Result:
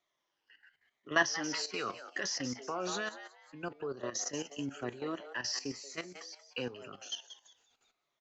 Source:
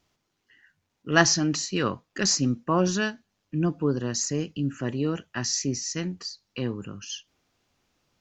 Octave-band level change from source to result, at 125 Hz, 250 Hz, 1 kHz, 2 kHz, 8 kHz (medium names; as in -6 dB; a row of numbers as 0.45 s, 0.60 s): -20.5 dB, -14.5 dB, -8.0 dB, -6.0 dB, no reading